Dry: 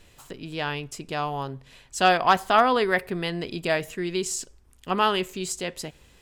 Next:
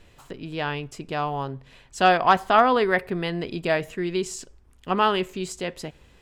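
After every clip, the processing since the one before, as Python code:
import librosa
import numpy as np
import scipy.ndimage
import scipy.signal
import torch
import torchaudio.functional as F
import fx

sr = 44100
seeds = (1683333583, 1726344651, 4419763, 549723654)

y = fx.high_shelf(x, sr, hz=4400.0, db=-10.5)
y = y * librosa.db_to_amplitude(2.0)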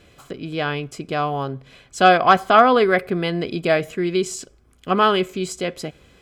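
y = fx.notch_comb(x, sr, f0_hz=920.0)
y = y * librosa.db_to_amplitude(5.5)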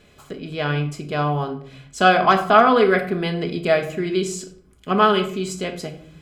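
y = fx.room_shoebox(x, sr, seeds[0], volume_m3=770.0, walls='furnished', distance_m=1.4)
y = y * librosa.db_to_amplitude(-2.0)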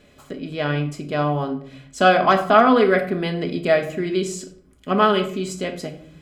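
y = fx.small_body(x, sr, hz=(270.0, 570.0, 1900.0), ring_ms=45, db=7)
y = y * librosa.db_to_amplitude(-1.5)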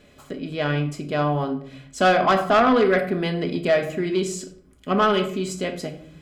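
y = 10.0 ** (-10.5 / 20.0) * np.tanh(x / 10.0 ** (-10.5 / 20.0))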